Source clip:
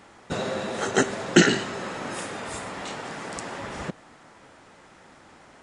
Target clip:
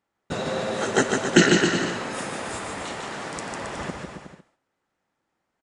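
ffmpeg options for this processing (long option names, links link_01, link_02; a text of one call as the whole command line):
ffmpeg -i in.wav -af "agate=range=-29dB:threshold=-45dB:ratio=16:detection=peak,aecho=1:1:150|270|366|442.8|504.2:0.631|0.398|0.251|0.158|0.1" out.wav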